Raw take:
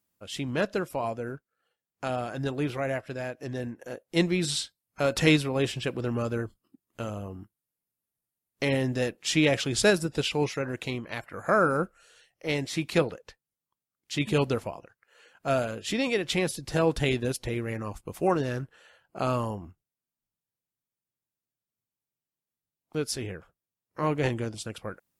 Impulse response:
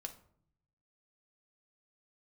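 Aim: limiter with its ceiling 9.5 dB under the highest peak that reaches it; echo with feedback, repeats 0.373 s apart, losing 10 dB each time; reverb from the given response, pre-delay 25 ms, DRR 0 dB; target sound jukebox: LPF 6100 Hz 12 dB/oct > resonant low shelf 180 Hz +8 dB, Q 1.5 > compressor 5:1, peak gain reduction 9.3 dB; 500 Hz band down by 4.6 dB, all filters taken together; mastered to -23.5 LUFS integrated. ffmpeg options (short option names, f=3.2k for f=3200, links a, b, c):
-filter_complex "[0:a]equalizer=f=500:t=o:g=-4.5,alimiter=limit=-19dB:level=0:latency=1,aecho=1:1:373|746|1119|1492:0.316|0.101|0.0324|0.0104,asplit=2[a][b];[1:a]atrim=start_sample=2205,adelay=25[c];[b][c]afir=irnorm=-1:irlink=0,volume=3.5dB[d];[a][d]amix=inputs=2:normalize=0,lowpass=6.1k,lowshelf=f=180:t=q:w=1.5:g=8,acompressor=threshold=-25dB:ratio=5,volume=7dB"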